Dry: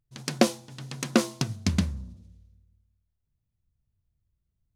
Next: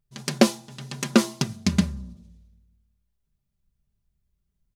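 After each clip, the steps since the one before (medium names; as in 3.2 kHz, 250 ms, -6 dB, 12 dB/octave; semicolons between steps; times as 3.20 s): comb 5 ms, depth 60%; trim +2 dB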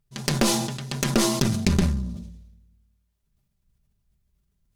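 compression 6:1, threshold -21 dBFS, peak gain reduction 10.5 dB; Chebyshev shaper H 5 -18 dB, 8 -14 dB, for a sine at -5.5 dBFS; decay stretcher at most 47 dB/s; trim -1 dB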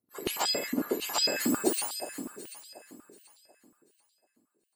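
spectrum inverted on a logarithmic axis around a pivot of 1.3 kHz; echo whose repeats swap between lows and highs 368 ms, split 1.5 kHz, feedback 52%, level -8.5 dB; step-sequenced high-pass 11 Hz 270–3900 Hz; trim -5 dB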